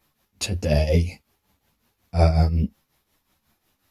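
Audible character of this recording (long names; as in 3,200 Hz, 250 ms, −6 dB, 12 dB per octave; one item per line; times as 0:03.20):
tremolo triangle 5.5 Hz, depth 75%
a shimmering, thickened sound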